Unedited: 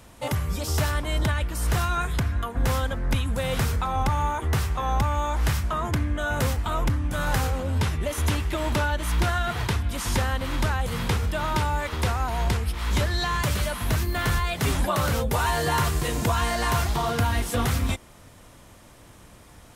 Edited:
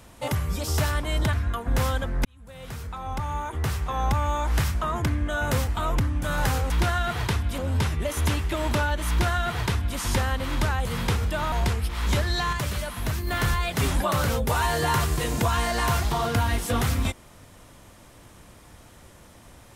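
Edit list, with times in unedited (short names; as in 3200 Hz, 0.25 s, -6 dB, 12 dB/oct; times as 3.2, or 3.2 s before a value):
1.33–2.22 cut
3.14–5.09 fade in
9.1–9.98 copy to 7.59
11.53–12.36 cut
13.37–14.11 gain -3.5 dB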